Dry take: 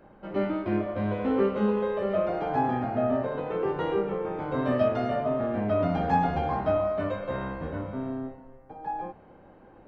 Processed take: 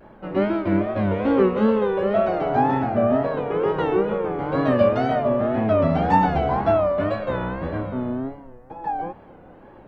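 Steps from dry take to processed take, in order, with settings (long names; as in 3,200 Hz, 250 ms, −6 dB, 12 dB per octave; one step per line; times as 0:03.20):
tape wow and flutter 120 cents
level +6.5 dB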